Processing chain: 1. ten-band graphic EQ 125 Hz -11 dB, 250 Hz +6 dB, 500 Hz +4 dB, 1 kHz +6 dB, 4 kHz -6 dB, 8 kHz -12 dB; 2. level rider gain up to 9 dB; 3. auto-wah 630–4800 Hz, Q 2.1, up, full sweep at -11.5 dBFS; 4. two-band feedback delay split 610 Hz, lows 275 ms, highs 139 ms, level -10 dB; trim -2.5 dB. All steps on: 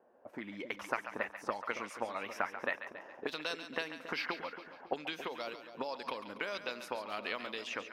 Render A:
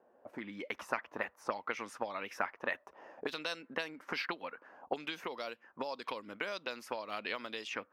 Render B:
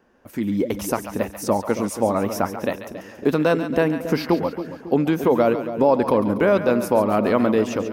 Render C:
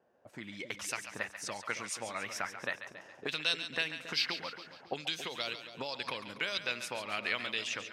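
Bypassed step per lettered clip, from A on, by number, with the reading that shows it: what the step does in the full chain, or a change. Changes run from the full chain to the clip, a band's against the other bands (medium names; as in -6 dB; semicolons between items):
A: 4, echo-to-direct -8.5 dB to none; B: 3, 4 kHz band -15.5 dB; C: 1, crest factor change -2.5 dB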